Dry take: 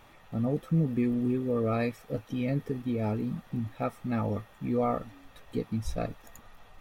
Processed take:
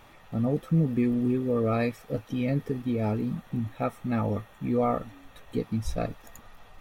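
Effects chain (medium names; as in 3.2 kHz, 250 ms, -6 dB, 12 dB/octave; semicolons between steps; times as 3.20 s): 3.35–5.58 s: band-stop 4.9 kHz, Q 7; trim +2.5 dB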